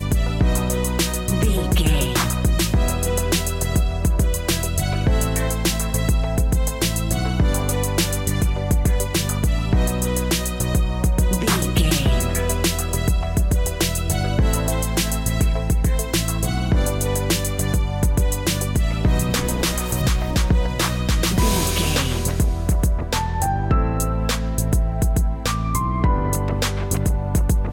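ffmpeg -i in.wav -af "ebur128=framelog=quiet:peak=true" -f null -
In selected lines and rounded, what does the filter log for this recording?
Integrated loudness:
  I:         -20.9 LUFS
  Threshold: -30.9 LUFS
Loudness range:
  LRA:         1.2 LU
  Threshold: -40.9 LUFS
  LRA low:   -21.5 LUFS
  LRA high:  -20.3 LUFS
True peak:
  Peak:       -6.7 dBFS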